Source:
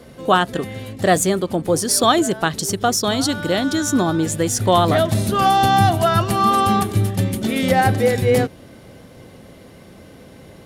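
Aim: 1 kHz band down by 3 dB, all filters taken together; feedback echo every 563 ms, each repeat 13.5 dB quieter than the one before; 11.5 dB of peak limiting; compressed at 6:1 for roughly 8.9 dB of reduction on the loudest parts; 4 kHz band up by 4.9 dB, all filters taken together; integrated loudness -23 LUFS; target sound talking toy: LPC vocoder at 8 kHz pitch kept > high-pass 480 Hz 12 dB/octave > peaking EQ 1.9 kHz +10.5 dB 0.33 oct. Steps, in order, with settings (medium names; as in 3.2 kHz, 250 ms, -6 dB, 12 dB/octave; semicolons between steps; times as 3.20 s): peaking EQ 1 kHz -4.5 dB; peaking EQ 4 kHz +6 dB; compression 6:1, threshold -21 dBFS; peak limiter -21.5 dBFS; feedback delay 563 ms, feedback 21%, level -13.5 dB; LPC vocoder at 8 kHz pitch kept; high-pass 480 Hz 12 dB/octave; peaking EQ 1.9 kHz +10.5 dB 0.33 oct; trim +11 dB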